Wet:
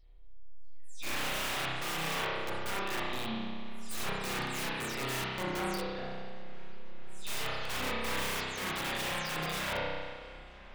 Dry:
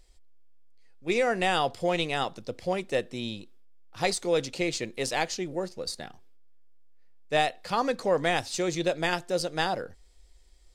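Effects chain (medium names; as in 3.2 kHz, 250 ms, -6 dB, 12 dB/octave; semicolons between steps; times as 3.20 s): delay that grows with frequency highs early, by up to 230 ms; bass shelf 65 Hz +4 dB; integer overflow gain 26.5 dB; on a send: feedback echo behind a low-pass 492 ms, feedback 79%, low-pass 3.4 kHz, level -20 dB; on the sum: spring tank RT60 1.7 s, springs 31 ms, chirp 45 ms, DRR -7.5 dB; trim -8.5 dB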